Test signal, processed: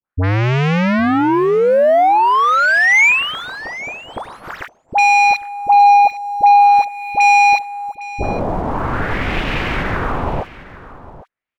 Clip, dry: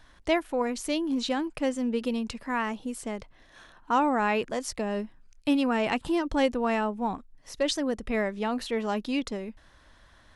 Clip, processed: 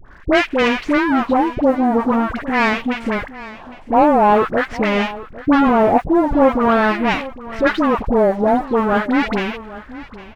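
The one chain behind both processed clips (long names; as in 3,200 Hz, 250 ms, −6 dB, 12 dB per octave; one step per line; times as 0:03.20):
each half-wave held at its own peak
in parallel at −1 dB: downward compressor, threshold −32 dBFS
on the sum: auto-filter low-pass sine 0.45 Hz 720–2,600 Hz
leveller curve on the samples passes 1
all-pass dispersion highs, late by 63 ms, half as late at 890 Hz
on a send: single-tap delay 807 ms −17 dB
on the sum: level +1.5 dB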